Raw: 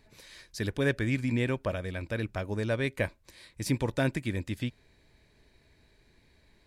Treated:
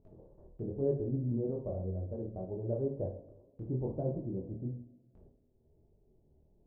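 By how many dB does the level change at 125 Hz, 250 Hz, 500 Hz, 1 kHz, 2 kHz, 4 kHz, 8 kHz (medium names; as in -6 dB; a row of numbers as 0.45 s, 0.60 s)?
-4.5 dB, -6.0 dB, -3.0 dB, -12.0 dB, under -40 dB, under -40 dB, under -35 dB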